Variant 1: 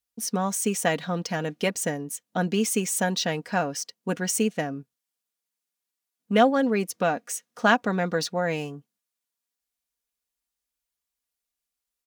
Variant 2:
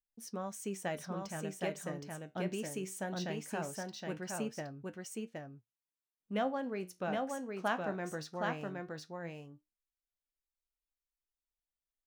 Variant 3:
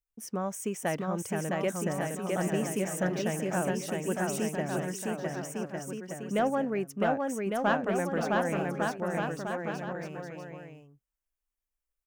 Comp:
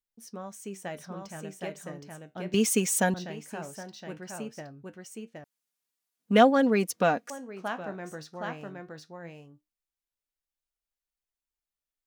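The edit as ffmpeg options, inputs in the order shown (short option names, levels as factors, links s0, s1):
-filter_complex "[0:a]asplit=2[s0][s1];[1:a]asplit=3[s2][s3][s4];[s2]atrim=end=2.542[s5];[s0]atrim=start=2.538:end=3.142[s6];[s3]atrim=start=3.138:end=5.442[s7];[s1]atrim=start=5.438:end=7.302[s8];[s4]atrim=start=7.298[s9];[s5][s6]acrossfade=d=0.004:c1=hsin:c2=hsin[s10];[s10][s7]acrossfade=d=0.004:c1=hsin:c2=hsin[s11];[s11][s8]acrossfade=d=0.004:c1=hsin:c2=hsin[s12];[s12][s9]acrossfade=d=0.004:c1=hsin:c2=hsin"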